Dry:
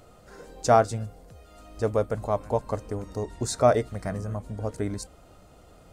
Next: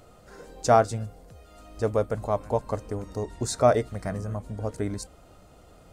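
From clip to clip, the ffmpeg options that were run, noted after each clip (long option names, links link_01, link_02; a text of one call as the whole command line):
ffmpeg -i in.wav -af anull out.wav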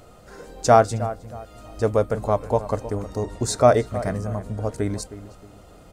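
ffmpeg -i in.wav -filter_complex "[0:a]asplit=2[link_01][link_02];[link_02]adelay=314,lowpass=frequency=1900:poles=1,volume=-14dB,asplit=2[link_03][link_04];[link_04]adelay=314,lowpass=frequency=1900:poles=1,volume=0.33,asplit=2[link_05][link_06];[link_06]adelay=314,lowpass=frequency=1900:poles=1,volume=0.33[link_07];[link_01][link_03][link_05][link_07]amix=inputs=4:normalize=0,volume=4.5dB" out.wav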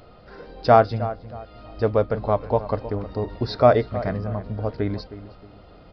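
ffmpeg -i in.wav -af "aresample=11025,aresample=44100" out.wav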